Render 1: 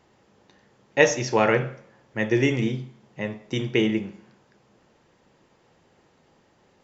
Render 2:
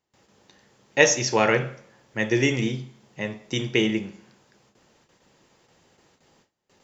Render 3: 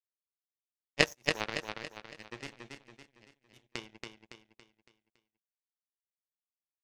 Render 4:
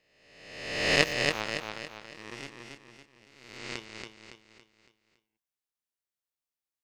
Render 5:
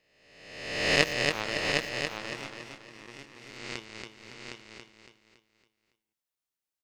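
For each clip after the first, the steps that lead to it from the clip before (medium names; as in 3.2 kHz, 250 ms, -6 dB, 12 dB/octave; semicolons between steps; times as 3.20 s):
gate with hold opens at -51 dBFS; treble shelf 3.5 kHz +11 dB; trim -1 dB
power-law waveshaper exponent 3; feedback delay 280 ms, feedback 43%, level -4.5 dB
reverse spectral sustain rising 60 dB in 1.10 s; trim -1 dB
delay 761 ms -5 dB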